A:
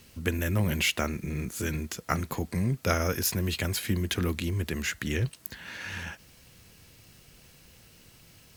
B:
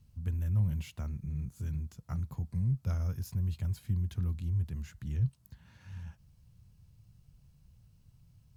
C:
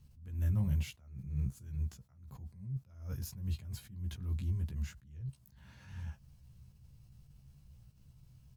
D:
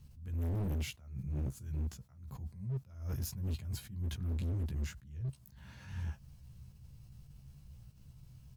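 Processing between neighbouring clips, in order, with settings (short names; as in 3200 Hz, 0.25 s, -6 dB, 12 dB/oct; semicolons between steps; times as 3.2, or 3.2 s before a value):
EQ curve 130 Hz 0 dB, 330 Hz -22 dB, 490 Hz -22 dB, 970 Hz -17 dB, 1900 Hz -27 dB, 4600 Hz -22 dB
doubler 15 ms -4 dB; attack slew limiter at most 100 dB/s; gain +1 dB
hard clip -36.5 dBFS, distortion -7 dB; gain +4 dB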